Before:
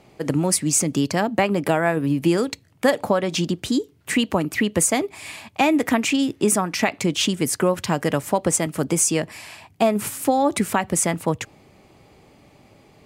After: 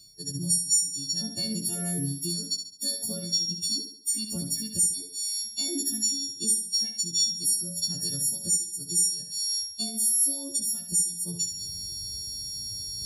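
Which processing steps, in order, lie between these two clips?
every partial snapped to a pitch grid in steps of 4 semitones
high shelf with overshoot 3,400 Hz +11.5 dB, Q 3
reversed playback
upward compression, threshold −4 dBFS
reversed playback
guitar amp tone stack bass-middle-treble 10-0-1
downward compressor 4 to 1, threshold −34 dBFS, peak gain reduction 20 dB
leveller curve on the samples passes 1
flutter between parallel walls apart 12 metres, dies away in 0.82 s
every bin expanded away from the loudest bin 1.5 to 1
level +6 dB

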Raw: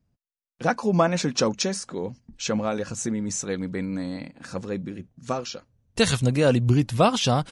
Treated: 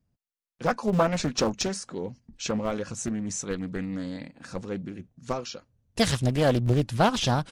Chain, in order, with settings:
in parallel at −11 dB: comparator with hysteresis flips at −18 dBFS
on the sum: highs frequency-modulated by the lows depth 0.76 ms
level −3 dB

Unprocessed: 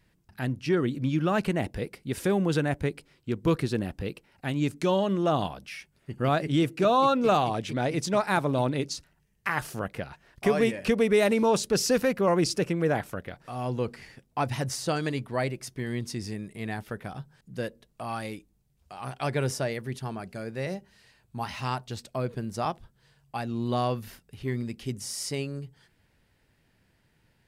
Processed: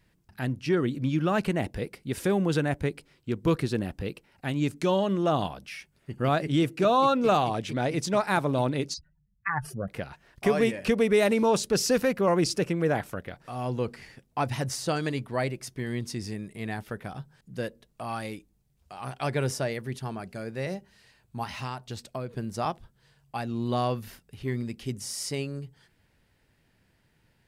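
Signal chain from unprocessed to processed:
0:08.94–0:09.88: expanding power law on the bin magnitudes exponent 2.6
0:21.43–0:22.35: downward compressor, threshold −31 dBFS, peak gain reduction 6.5 dB

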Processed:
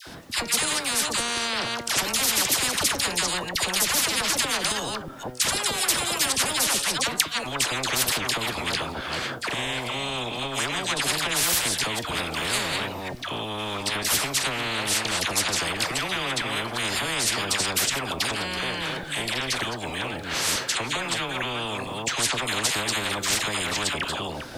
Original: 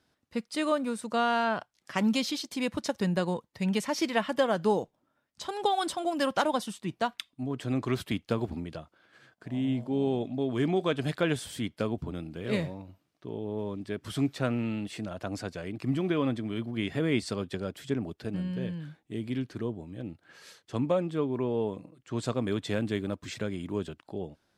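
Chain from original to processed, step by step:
delay that plays each chunk backwards 218 ms, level −12.5 dB
in parallel at +1 dB: downward compressor, threshold −37 dBFS, peak gain reduction 15.5 dB
on the sum: flanger 0.26 Hz, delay 5.7 ms, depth 3 ms, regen +79%
all-pass dispersion lows, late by 71 ms, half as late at 1,000 Hz
boost into a limiter +21.5 dB
every bin compressed towards the loudest bin 10 to 1
level −1 dB

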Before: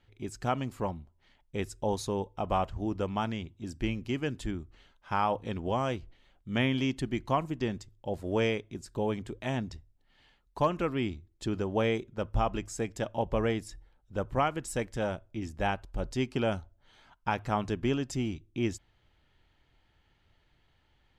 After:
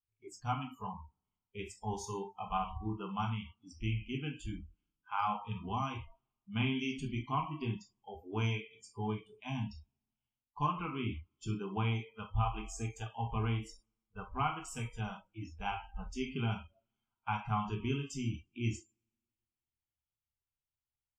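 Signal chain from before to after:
phaser with its sweep stopped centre 2,700 Hz, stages 8
coupled-rooms reverb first 0.43 s, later 1.9 s, from −18 dB, DRR 0 dB
noise reduction from a noise print of the clip's start 28 dB
level −5 dB

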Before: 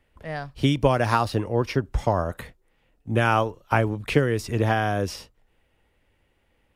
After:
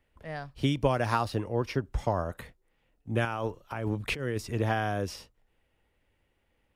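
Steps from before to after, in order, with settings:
0:03.25–0:04.38: compressor whose output falls as the input rises −26 dBFS, ratio −1
level −6 dB

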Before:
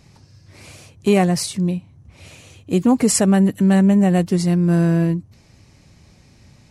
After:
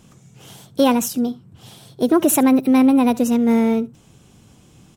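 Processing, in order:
slap from a distant wall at 16 metres, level −21 dB
wrong playback speed 33 rpm record played at 45 rpm

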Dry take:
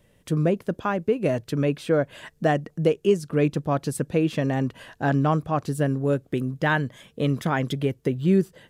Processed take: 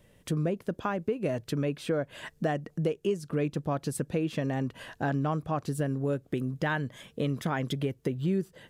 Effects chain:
downward compressor 2.5 to 1, threshold −29 dBFS, peak gain reduction 10 dB

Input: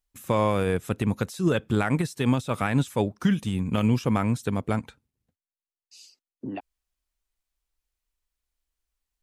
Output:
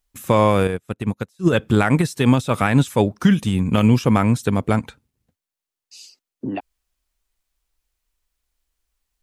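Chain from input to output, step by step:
0:00.67–0:01.53: expander for the loud parts 2.5 to 1, over −37 dBFS
level +7.5 dB

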